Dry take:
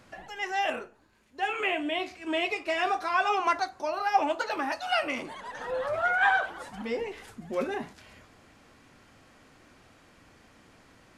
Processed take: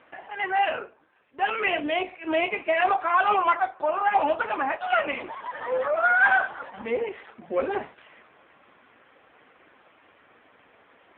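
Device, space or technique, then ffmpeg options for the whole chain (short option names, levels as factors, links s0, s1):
telephone: -filter_complex "[0:a]asplit=3[s0][s1][s2];[s0]afade=t=out:st=7.23:d=0.02[s3];[s1]highpass=70,afade=t=in:st=7.23:d=0.02,afade=t=out:st=7.65:d=0.02[s4];[s2]afade=t=in:st=7.65:d=0.02[s5];[s3][s4][s5]amix=inputs=3:normalize=0,highpass=370,lowpass=3300,asoftclip=type=tanh:threshold=0.126,volume=2.51" -ar 8000 -c:a libopencore_amrnb -b:a 5150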